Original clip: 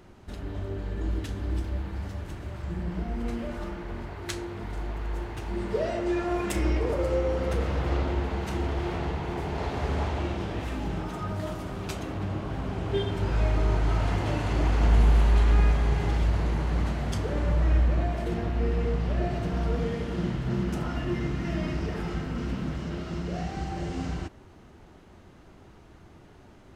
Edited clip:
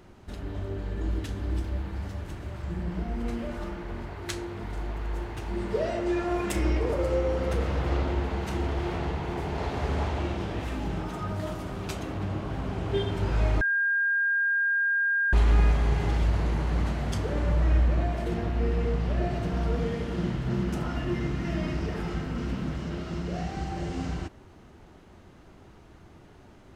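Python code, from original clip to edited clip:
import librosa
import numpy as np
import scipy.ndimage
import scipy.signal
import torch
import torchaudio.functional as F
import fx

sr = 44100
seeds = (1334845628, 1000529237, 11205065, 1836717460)

y = fx.edit(x, sr, fx.bleep(start_s=13.61, length_s=1.72, hz=1610.0, db=-22.0), tone=tone)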